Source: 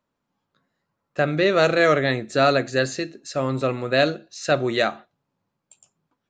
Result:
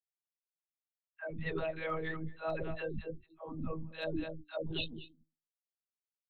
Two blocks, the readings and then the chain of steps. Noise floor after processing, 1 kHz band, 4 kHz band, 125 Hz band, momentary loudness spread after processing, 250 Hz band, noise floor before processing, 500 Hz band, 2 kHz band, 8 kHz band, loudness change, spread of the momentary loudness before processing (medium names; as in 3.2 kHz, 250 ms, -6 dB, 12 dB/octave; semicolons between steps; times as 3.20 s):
under -85 dBFS, -20.5 dB, -17.0 dB, -15.0 dB, 10 LU, -16.0 dB, -80 dBFS, -19.0 dB, -19.5 dB, under -40 dB, -18.5 dB, 9 LU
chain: expander on every frequency bin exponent 3; in parallel at 0 dB: level held to a coarse grid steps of 11 dB; on the sum: hum notches 60/120/180/240/300/360/420 Hz; comb 7.3 ms, depth 50%; spectral replace 4.69–5.31 s, 260–2500 Hz both; speakerphone echo 230 ms, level -17 dB; monotone LPC vocoder at 8 kHz 160 Hz; reverse; compression 5:1, threshold -33 dBFS, peak gain reduction 21.5 dB; reverse; hard clipper -21 dBFS, distortion -45 dB; phase dispersion lows, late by 133 ms, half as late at 430 Hz; trim -2 dB